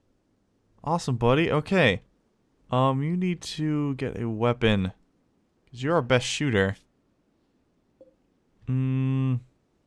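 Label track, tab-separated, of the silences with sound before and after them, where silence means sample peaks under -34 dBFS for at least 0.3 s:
1.970000	2.720000	silence
4.900000	5.780000	silence
6.730000	8.690000	silence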